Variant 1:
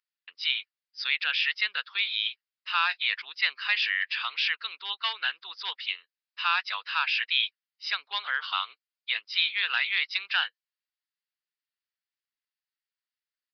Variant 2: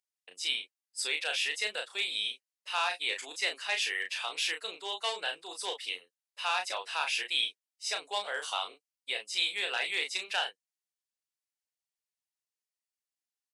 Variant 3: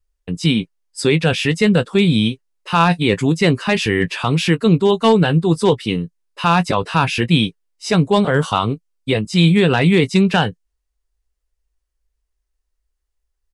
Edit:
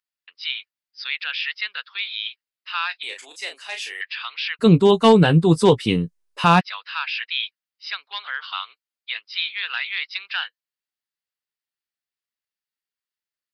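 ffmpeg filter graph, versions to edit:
-filter_complex "[0:a]asplit=3[s0][s1][s2];[s0]atrim=end=3.032[s3];[1:a]atrim=start=3.028:end=4.012[s4];[s1]atrim=start=4.008:end=4.61[s5];[2:a]atrim=start=4.59:end=6.61[s6];[s2]atrim=start=6.59[s7];[s3][s4]acrossfade=d=0.004:c1=hsin:c2=hsin[s8];[s8][s5]acrossfade=d=0.004:c1=hsin:c2=hsin[s9];[s9][s6]acrossfade=d=0.02:c1=tri:c2=tri[s10];[s10][s7]acrossfade=d=0.02:c1=tri:c2=tri"

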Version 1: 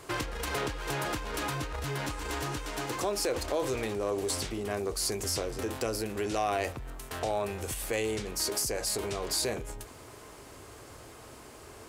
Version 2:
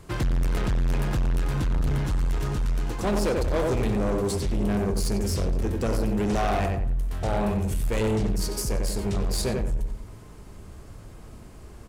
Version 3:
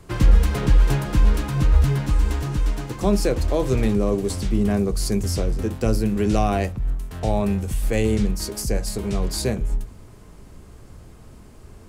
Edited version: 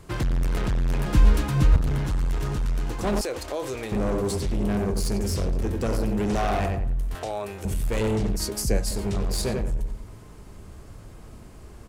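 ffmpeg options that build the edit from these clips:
-filter_complex "[2:a]asplit=2[s0][s1];[0:a]asplit=2[s2][s3];[1:a]asplit=5[s4][s5][s6][s7][s8];[s4]atrim=end=1.062[s9];[s0]atrim=start=1.058:end=1.762[s10];[s5]atrim=start=1.758:end=3.212[s11];[s2]atrim=start=3.208:end=3.922[s12];[s6]atrim=start=3.918:end=7.152[s13];[s3]atrim=start=7.148:end=7.652[s14];[s7]atrim=start=7.648:end=8.372[s15];[s1]atrim=start=8.368:end=8.912[s16];[s8]atrim=start=8.908[s17];[s9][s10]acrossfade=d=0.004:c1=hsin:c2=hsin[s18];[s18][s11]acrossfade=d=0.004:c1=hsin:c2=hsin[s19];[s19][s12]acrossfade=d=0.004:c1=hsin:c2=hsin[s20];[s20][s13]acrossfade=d=0.004:c1=hsin:c2=hsin[s21];[s21][s14]acrossfade=d=0.004:c1=hsin:c2=hsin[s22];[s22][s15]acrossfade=d=0.004:c1=hsin:c2=hsin[s23];[s23][s16]acrossfade=d=0.004:c1=hsin:c2=hsin[s24];[s24][s17]acrossfade=d=0.004:c1=hsin:c2=hsin"

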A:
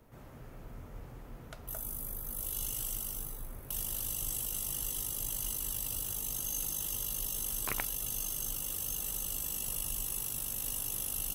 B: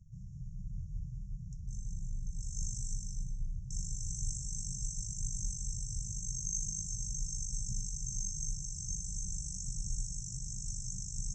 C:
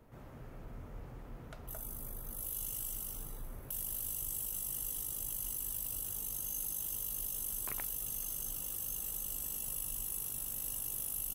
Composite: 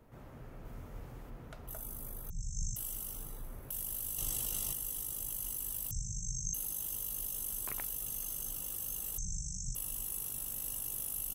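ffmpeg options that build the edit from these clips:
-filter_complex "[0:a]asplit=2[s0][s1];[1:a]asplit=3[s2][s3][s4];[2:a]asplit=6[s5][s6][s7][s8][s9][s10];[s5]atrim=end=0.652[s11];[s0]atrim=start=0.648:end=1.302[s12];[s6]atrim=start=1.298:end=2.302[s13];[s2]atrim=start=2.298:end=2.762[s14];[s7]atrim=start=2.758:end=4.182[s15];[s1]atrim=start=4.178:end=4.732[s16];[s8]atrim=start=4.728:end=5.912[s17];[s3]atrim=start=5.908:end=6.542[s18];[s9]atrim=start=6.538:end=9.182[s19];[s4]atrim=start=9.178:end=9.752[s20];[s10]atrim=start=9.748[s21];[s11][s12]acrossfade=d=0.004:c1=hsin:c2=hsin[s22];[s22][s13]acrossfade=d=0.004:c1=hsin:c2=hsin[s23];[s23][s14]acrossfade=d=0.004:c1=hsin:c2=hsin[s24];[s24][s15]acrossfade=d=0.004:c1=hsin:c2=hsin[s25];[s25][s16]acrossfade=d=0.004:c1=hsin:c2=hsin[s26];[s26][s17]acrossfade=d=0.004:c1=hsin:c2=hsin[s27];[s27][s18]acrossfade=d=0.004:c1=hsin:c2=hsin[s28];[s28][s19]acrossfade=d=0.004:c1=hsin:c2=hsin[s29];[s29][s20]acrossfade=d=0.004:c1=hsin:c2=hsin[s30];[s30][s21]acrossfade=d=0.004:c1=hsin:c2=hsin"

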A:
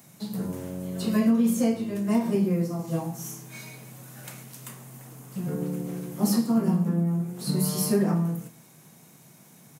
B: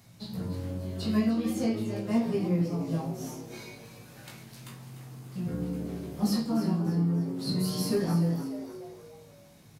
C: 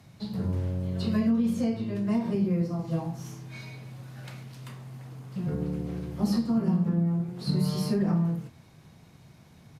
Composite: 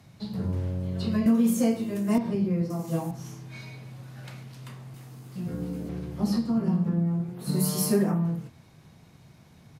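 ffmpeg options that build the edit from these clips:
-filter_complex "[0:a]asplit=3[s0][s1][s2];[2:a]asplit=5[s3][s4][s5][s6][s7];[s3]atrim=end=1.262[s8];[s0]atrim=start=1.258:end=2.182[s9];[s4]atrim=start=2.178:end=2.702[s10];[s1]atrim=start=2.698:end=3.112[s11];[s5]atrim=start=3.108:end=4.942[s12];[1:a]atrim=start=4.938:end=5.892[s13];[s6]atrim=start=5.888:end=7.57[s14];[s2]atrim=start=7.33:end=8.25[s15];[s7]atrim=start=8.01[s16];[s8][s9]acrossfade=d=0.004:c1=hsin:c2=hsin[s17];[s17][s10]acrossfade=d=0.004:c1=hsin:c2=hsin[s18];[s18][s11]acrossfade=d=0.004:c1=hsin:c2=hsin[s19];[s19][s12]acrossfade=d=0.004:c1=hsin:c2=hsin[s20];[s20][s13]acrossfade=d=0.004:c1=hsin:c2=hsin[s21];[s21][s14]acrossfade=d=0.004:c1=hsin:c2=hsin[s22];[s22][s15]acrossfade=d=0.24:c1=tri:c2=tri[s23];[s23][s16]acrossfade=d=0.24:c1=tri:c2=tri"

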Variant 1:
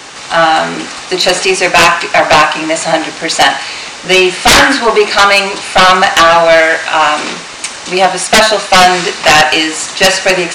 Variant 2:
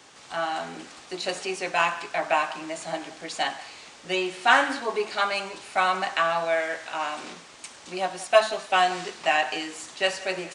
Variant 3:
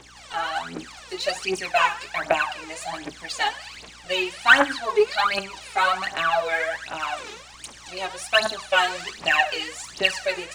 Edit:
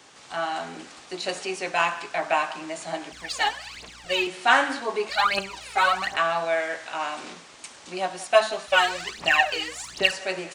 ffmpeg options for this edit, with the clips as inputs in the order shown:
-filter_complex "[2:a]asplit=3[s0][s1][s2];[1:a]asplit=4[s3][s4][s5][s6];[s3]atrim=end=3.122[s7];[s0]atrim=start=3.118:end=4.272[s8];[s4]atrim=start=4.268:end=5.092[s9];[s1]atrim=start=5.088:end=6.172[s10];[s5]atrim=start=6.168:end=8.682[s11];[s2]atrim=start=8.678:end=10.122[s12];[s6]atrim=start=10.118[s13];[s7][s8]acrossfade=d=0.004:c1=hsin:c2=hsin[s14];[s14][s9]acrossfade=d=0.004:c1=hsin:c2=hsin[s15];[s15][s10]acrossfade=d=0.004:c1=hsin:c2=hsin[s16];[s16][s11]acrossfade=d=0.004:c1=hsin:c2=hsin[s17];[s17][s12]acrossfade=d=0.004:c1=hsin:c2=hsin[s18];[s18][s13]acrossfade=d=0.004:c1=hsin:c2=hsin"

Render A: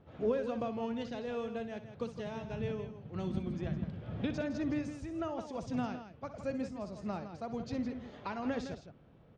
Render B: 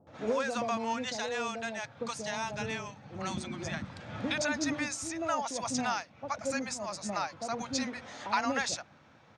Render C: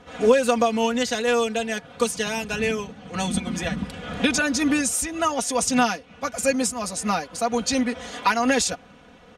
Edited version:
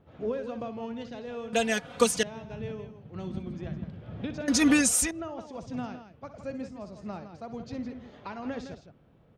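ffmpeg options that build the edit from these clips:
-filter_complex "[2:a]asplit=2[s0][s1];[0:a]asplit=3[s2][s3][s4];[s2]atrim=end=1.532[s5];[s0]atrim=start=1.528:end=2.232[s6];[s3]atrim=start=2.228:end=4.482[s7];[s1]atrim=start=4.478:end=5.112[s8];[s4]atrim=start=5.108[s9];[s5][s6]acrossfade=d=0.004:c1=hsin:c2=hsin[s10];[s10][s7]acrossfade=d=0.004:c1=hsin:c2=hsin[s11];[s11][s8]acrossfade=d=0.004:c1=hsin:c2=hsin[s12];[s12][s9]acrossfade=d=0.004:c1=hsin:c2=hsin"

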